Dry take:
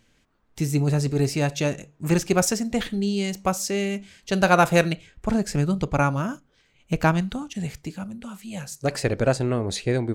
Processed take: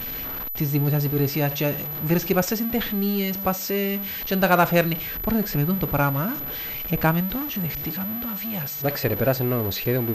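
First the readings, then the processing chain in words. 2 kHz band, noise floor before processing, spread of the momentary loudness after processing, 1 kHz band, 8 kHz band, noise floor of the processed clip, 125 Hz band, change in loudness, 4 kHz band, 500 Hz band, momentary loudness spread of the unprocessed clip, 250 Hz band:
0.0 dB, -64 dBFS, 6 LU, -0.5 dB, -6.5 dB, -31 dBFS, 0.0 dB, +0.5 dB, +0.5 dB, -0.5 dB, 13 LU, +0.5 dB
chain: zero-crossing step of -28.5 dBFS; pulse-width modulation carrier 12000 Hz; gain -1.5 dB

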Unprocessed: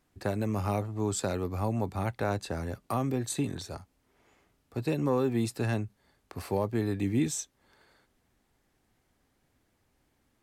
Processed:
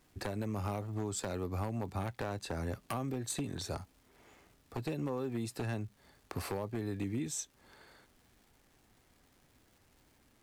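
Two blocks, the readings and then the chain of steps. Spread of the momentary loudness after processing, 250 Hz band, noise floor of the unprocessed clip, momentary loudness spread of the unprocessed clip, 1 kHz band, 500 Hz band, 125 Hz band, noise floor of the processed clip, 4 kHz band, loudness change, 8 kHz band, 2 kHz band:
5 LU, -7.5 dB, -73 dBFS, 12 LU, -6.5 dB, -7.5 dB, -6.5 dB, -68 dBFS, -3.0 dB, -7.0 dB, -4.0 dB, -5.5 dB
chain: compressor 8:1, threshold -37 dBFS, peak gain reduction 14.5 dB; crackle 400/s -61 dBFS; wavefolder -32 dBFS; gain +4 dB

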